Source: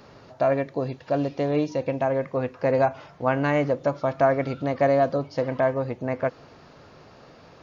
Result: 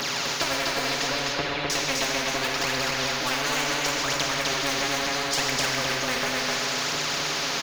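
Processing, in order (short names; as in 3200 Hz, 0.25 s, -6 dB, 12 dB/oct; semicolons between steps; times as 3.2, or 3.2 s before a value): HPF 180 Hz 24 dB/oct; tilt shelf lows -6 dB; comb 7.1 ms, depth 90%; compressor, threshold -29 dBFS, peak gain reduction 15.5 dB; phaser 0.72 Hz, delay 4.9 ms, feedback 78%; 1.07–1.7 air absorption 490 m; echo 0.254 s -3.5 dB; plate-style reverb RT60 1.4 s, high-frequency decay 0.95×, DRR 2.5 dB; spectral compressor 4:1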